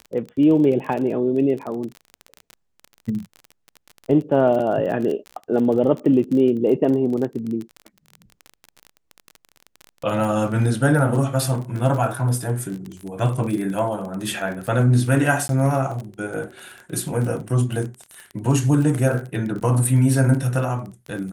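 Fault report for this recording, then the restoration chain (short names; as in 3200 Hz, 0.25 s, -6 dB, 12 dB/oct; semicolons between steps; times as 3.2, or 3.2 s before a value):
crackle 28/s -27 dBFS
15.48–15.49 gap 12 ms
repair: de-click; interpolate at 15.48, 12 ms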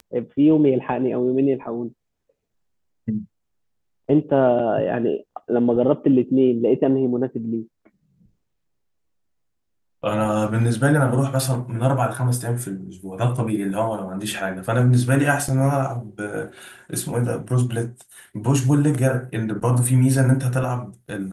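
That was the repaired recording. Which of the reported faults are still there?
none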